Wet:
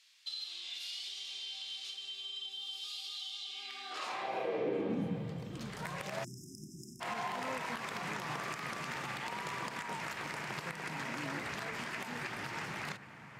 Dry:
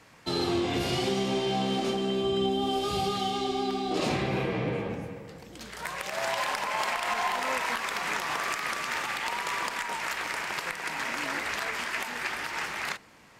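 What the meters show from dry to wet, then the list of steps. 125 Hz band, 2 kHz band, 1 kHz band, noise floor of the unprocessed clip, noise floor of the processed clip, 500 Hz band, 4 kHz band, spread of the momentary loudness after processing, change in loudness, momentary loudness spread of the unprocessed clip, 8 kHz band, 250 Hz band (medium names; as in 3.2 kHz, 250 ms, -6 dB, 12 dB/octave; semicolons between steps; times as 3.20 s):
-8.5 dB, -10.0 dB, -10.5 dB, -52 dBFS, -52 dBFS, -11.0 dB, -6.5 dB, 6 LU, -9.5 dB, 6 LU, -10.5 dB, -10.5 dB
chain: high-pass sweep 3.6 kHz -> 130 Hz, 3.42–5.30 s; treble shelf 2.9 kHz +8.5 dB; feedback echo behind a band-pass 774 ms, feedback 77%, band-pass 1.4 kHz, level -19 dB; compression 2.5:1, threshold -30 dBFS, peak gain reduction 7.5 dB; spectral selection erased 6.24–7.01 s, 400–5000 Hz; tilt EQ -3 dB/octave; trim -6 dB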